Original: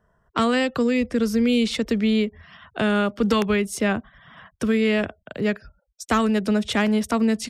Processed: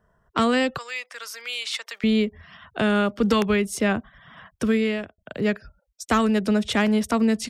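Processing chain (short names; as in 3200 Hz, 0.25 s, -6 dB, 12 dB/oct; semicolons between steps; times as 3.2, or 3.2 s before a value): 0.78–2.04 HPF 880 Hz 24 dB/oct; 4.73–5.18 fade out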